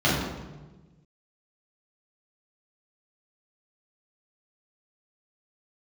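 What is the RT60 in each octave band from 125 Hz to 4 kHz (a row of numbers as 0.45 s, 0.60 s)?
1.8 s, 1.6 s, 1.3 s, 1.1 s, 0.95 s, 0.80 s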